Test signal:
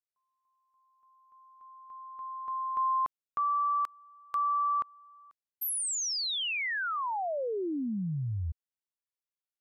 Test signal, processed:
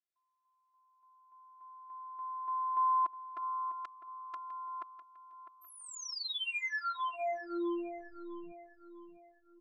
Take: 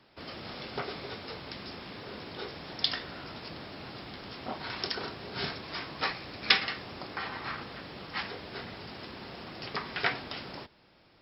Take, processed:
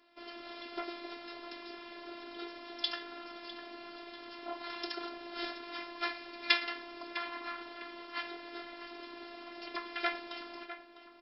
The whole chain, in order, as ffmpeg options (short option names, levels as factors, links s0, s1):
-filter_complex "[0:a]highpass=210,lowpass=4400,asplit=2[s0][s1];[s1]adelay=653,lowpass=f=2600:p=1,volume=0.282,asplit=2[s2][s3];[s3]adelay=653,lowpass=f=2600:p=1,volume=0.43,asplit=2[s4][s5];[s5]adelay=653,lowpass=f=2600:p=1,volume=0.43,asplit=2[s6][s7];[s7]adelay=653,lowpass=f=2600:p=1,volume=0.43[s8];[s0][s2][s4][s6][s8]amix=inputs=5:normalize=0,afftfilt=real='hypot(re,im)*cos(PI*b)':imag='0':win_size=512:overlap=0.75"